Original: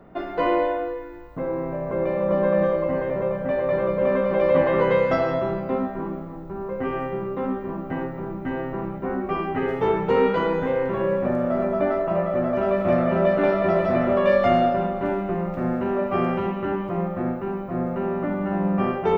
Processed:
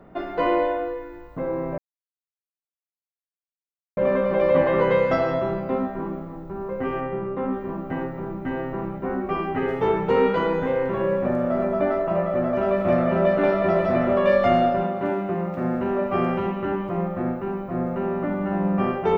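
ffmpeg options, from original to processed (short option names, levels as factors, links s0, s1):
-filter_complex "[0:a]asplit=3[s0][s1][s2];[s0]afade=t=out:st=7:d=0.02[s3];[s1]lowpass=2900,afade=t=in:st=7:d=0.02,afade=t=out:st=7.51:d=0.02[s4];[s2]afade=t=in:st=7.51:d=0.02[s5];[s3][s4][s5]amix=inputs=3:normalize=0,asettb=1/sr,asplit=3[s6][s7][s8];[s6]atrim=end=14.844[s9];[s7]atrim=start=14.84:end=15.75,asetpts=PTS-STARTPTS,afade=t=in:d=0.004:c=qsin,afade=t=out:st=0.906:d=0.004:c=qsin,highpass=100[s10];[s8]atrim=start=15.746[s11];[s9][s10]acrossfade=d=0.004:c1=hsin:c2=qsin[s12];[s12][s11]acrossfade=d=0.004:c1=qsin:c2=hsin,asplit=3[s13][s14][s15];[s13]atrim=end=1.78,asetpts=PTS-STARTPTS,afade=t=out:st=1.776:d=0.004:c=hsin[s16];[s14]atrim=start=1.78:end=3.97,asetpts=PTS-STARTPTS,volume=0[s17];[s15]atrim=start=3.97,asetpts=PTS-STARTPTS,afade=t=in:d=0.004:c=hsin[s18];[s16][s17][s18]concat=n=3:v=0:a=1"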